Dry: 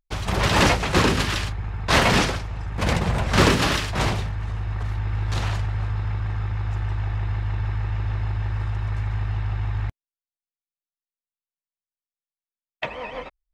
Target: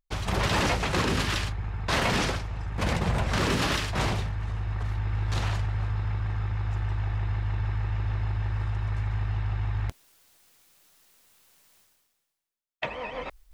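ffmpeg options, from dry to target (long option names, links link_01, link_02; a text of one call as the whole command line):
ffmpeg -i in.wav -af "areverse,acompressor=mode=upward:threshold=-28dB:ratio=2.5,areverse,alimiter=limit=-12.5dB:level=0:latency=1:release=60,volume=-3dB" out.wav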